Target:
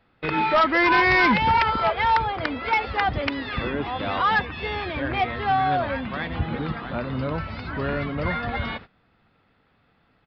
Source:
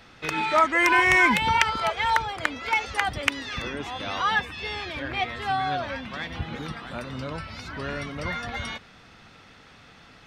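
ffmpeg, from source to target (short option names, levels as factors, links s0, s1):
-af "agate=range=0.126:threshold=0.00708:ratio=16:detection=peak,lowpass=f=1400:p=1,aresample=11025,asoftclip=type=tanh:threshold=0.0944,aresample=44100,volume=2.37"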